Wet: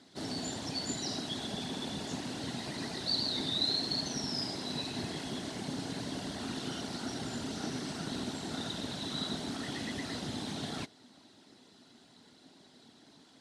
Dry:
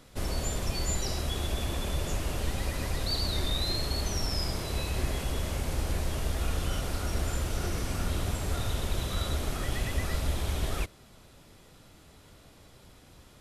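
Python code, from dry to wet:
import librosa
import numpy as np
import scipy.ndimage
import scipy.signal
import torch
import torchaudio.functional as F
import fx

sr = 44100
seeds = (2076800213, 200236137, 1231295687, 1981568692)

y = fx.whisperise(x, sr, seeds[0])
y = fx.cabinet(y, sr, low_hz=230.0, low_slope=12, high_hz=8400.0, hz=(260.0, 520.0, 1200.0, 2400.0, 4100.0, 7200.0), db=(8, -8, -7, -7, 6, -4))
y = y * 10.0 ** (-2.0 / 20.0)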